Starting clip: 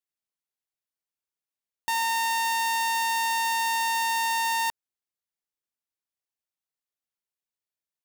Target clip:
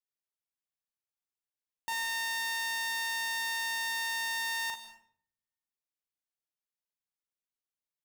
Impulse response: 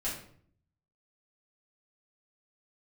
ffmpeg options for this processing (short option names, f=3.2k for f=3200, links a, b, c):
-filter_complex "[0:a]asplit=2[a][b];[b]adelay=41,volume=-7dB[c];[a][c]amix=inputs=2:normalize=0,aecho=1:1:35|53:0.211|0.282,asplit=2[d][e];[1:a]atrim=start_sample=2205,adelay=142[f];[e][f]afir=irnorm=-1:irlink=0,volume=-16dB[g];[d][g]amix=inputs=2:normalize=0,volume=-8dB"